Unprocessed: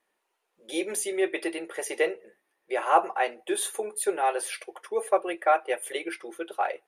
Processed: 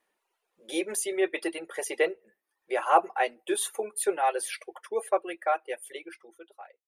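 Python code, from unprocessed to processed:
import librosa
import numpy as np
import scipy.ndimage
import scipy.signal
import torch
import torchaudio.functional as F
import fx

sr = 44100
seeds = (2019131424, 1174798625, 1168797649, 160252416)

y = fx.fade_out_tail(x, sr, length_s=2.28)
y = fx.dereverb_blind(y, sr, rt60_s=0.65)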